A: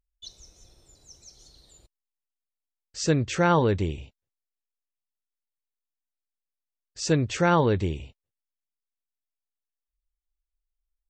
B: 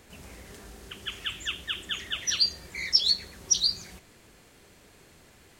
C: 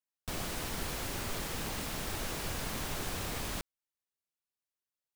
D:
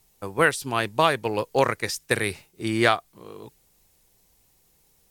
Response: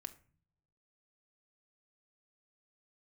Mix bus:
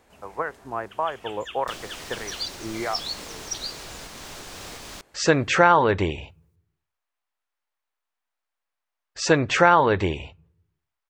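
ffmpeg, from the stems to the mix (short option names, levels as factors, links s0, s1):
-filter_complex "[0:a]equalizer=f=1800:w=0.47:g=10,adelay=2200,volume=0.708,asplit=2[s0][s1];[s1]volume=0.596[s2];[1:a]volume=0.251,asplit=2[s3][s4];[s4]volume=0.668[s5];[2:a]acrossover=split=7500[s6][s7];[s7]acompressor=threshold=0.00141:ratio=4:attack=1:release=60[s8];[s6][s8]amix=inputs=2:normalize=0,bass=f=250:g=-6,treble=f=4000:g=6,alimiter=level_in=2.11:limit=0.0631:level=0:latency=1:release=469,volume=0.473,adelay=1400,volume=1.26[s9];[3:a]acrossover=split=570[s10][s11];[s10]aeval=exprs='val(0)*(1-0.5/2+0.5/2*cos(2*PI*1.5*n/s))':c=same[s12];[s11]aeval=exprs='val(0)*(1-0.5/2-0.5/2*cos(2*PI*1.5*n/s))':c=same[s13];[s12][s13]amix=inputs=2:normalize=0,alimiter=limit=0.211:level=0:latency=1:release=313,lowpass=f=1900:w=0.5412,lowpass=f=1900:w=1.3066,volume=0.299[s14];[s0][s3][s14]amix=inputs=3:normalize=0,equalizer=f=820:w=0.64:g=12.5,acompressor=threshold=0.2:ratio=6,volume=1[s15];[4:a]atrim=start_sample=2205[s16];[s2][s5]amix=inputs=2:normalize=0[s17];[s17][s16]afir=irnorm=-1:irlink=0[s18];[s9][s15][s18]amix=inputs=3:normalize=0"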